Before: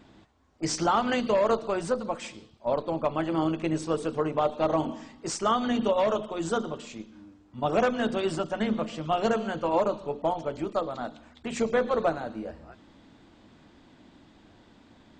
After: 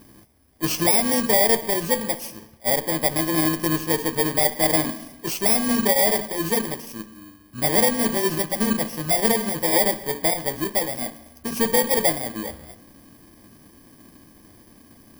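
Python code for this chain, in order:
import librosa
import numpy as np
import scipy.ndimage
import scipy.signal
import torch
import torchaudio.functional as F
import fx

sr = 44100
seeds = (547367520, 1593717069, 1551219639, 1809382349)

y = fx.bit_reversed(x, sr, seeds[0], block=32)
y = fx.rev_spring(y, sr, rt60_s=1.3, pass_ms=(55,), chirp_ms=50, drr_db=19.0)
y = y * 10.0 ** (5.5 / 20.0)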